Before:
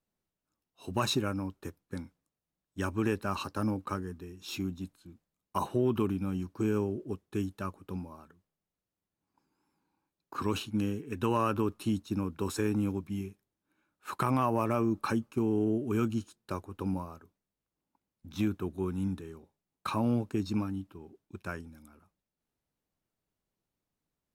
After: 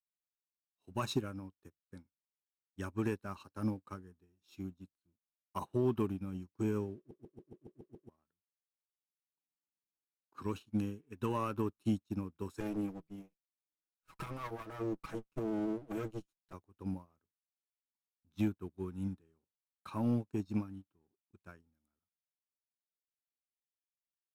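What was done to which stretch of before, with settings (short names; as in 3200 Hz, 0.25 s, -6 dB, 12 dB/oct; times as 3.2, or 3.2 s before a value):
6.97 stutter in place 0.14 s, 8 plays
12.6–16.53 minimum comb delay 6.2 ms
whole clip: low shelf 230 Hz +3 dB; sample leveller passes 1; upward expander 2.5:1, over -39 dBFS; gain -5.5 dB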